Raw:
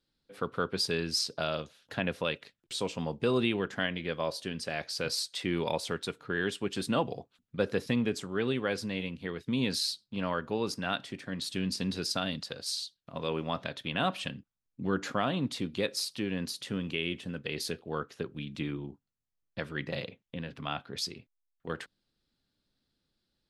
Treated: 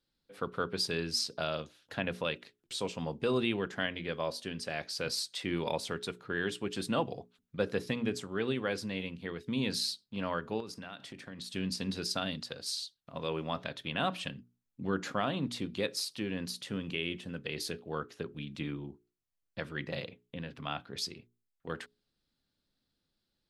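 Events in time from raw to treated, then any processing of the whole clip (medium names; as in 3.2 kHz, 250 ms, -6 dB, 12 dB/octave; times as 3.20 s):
10.60–11.55 s: compression 12:1, threshold -37 dBFS
whole clip: hum notches 60/120/180/240/300/360/420 Hz; trim -2 dB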